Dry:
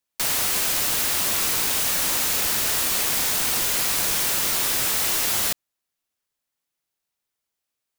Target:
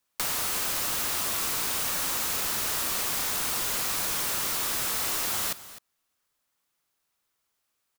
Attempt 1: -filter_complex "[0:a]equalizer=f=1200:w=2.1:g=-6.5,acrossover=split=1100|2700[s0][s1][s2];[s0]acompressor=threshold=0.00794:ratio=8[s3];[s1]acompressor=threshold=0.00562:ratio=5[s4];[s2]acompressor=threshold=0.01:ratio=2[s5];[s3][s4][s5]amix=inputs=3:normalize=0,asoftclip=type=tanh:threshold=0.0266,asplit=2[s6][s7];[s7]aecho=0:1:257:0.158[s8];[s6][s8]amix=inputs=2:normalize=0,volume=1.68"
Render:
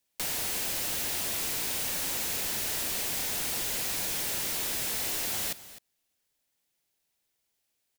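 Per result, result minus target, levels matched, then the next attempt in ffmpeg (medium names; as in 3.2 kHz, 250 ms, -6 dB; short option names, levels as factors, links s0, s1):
saturation: distortion +13 dB; 1 kHz band -4.5 dB
-filter_complex "[0:a]equalizer=f=1200:w=2.1:g=-6.5,acrossover=split=1100|2700[s0][s1][s2];[s0]acompressor=threshold=0.00794:ratio=8[s3];[s1]acompressor=threshold=0.00562:ratio=5[s4];[s2]acompressor=threshold=0.01:ratio=2[s5];[s3][s4][s5]amix=inputs=3:normalize=0,asoftclip=type=tanh:threshold=0.0841,asplit=2[s6][s7];[s7]aecho=0:1:257:0.158[s8];[s6][s8]amix=inputs=2:normalize=0,volume=1.68"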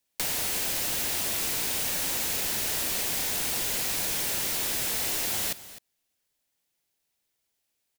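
1 kHz band -4.5 dB
-filter_complex "[0:a]equalizer=f=1200:w=2.1:g=5,acrossover=split=1100|2700[s0][s1][s2];[s0]acompressor=threshold=0.00794:ratio=8[s3];[s1]acompressor=threshold=0.00562:ratio=5[s4];[s2]acompressor=threshold=0.01:ratio=2[s5];[s3][s4][s5]amix=inputs=3:normalize=0,asoftclip=type=tanh:threshold=0.0841,asplit=2[s6][s7];[s7]aecho=0:1:257:0.158[s8];[s6][s8]amix=inputs=2:normalize=0,volume=1.68"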